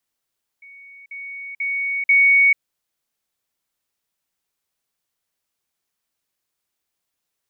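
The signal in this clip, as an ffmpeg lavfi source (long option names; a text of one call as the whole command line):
ffmpeg -f lavfi -i "aevalsrc='pow(10,(-40.5+10*floor(t/0.49))/20)*sin(2*PI*2230*t)*clip(min(mod(t,0.49),0.44-mod(t,0.49))/0.005,0,1)':duration=1.96:sample_rate=44100" out.wav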